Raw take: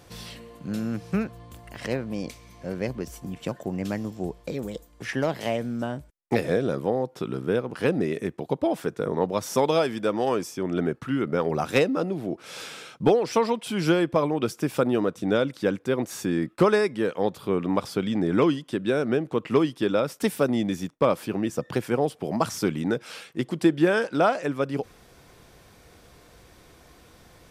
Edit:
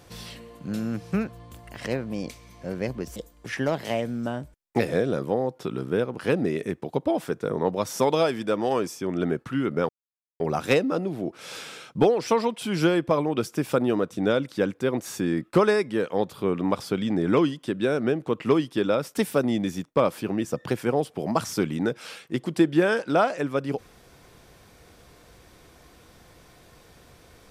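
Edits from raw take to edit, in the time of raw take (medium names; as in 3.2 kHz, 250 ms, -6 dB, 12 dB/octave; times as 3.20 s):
3.16–4.72 s: delete
11.45 s: insert silence 0.51 s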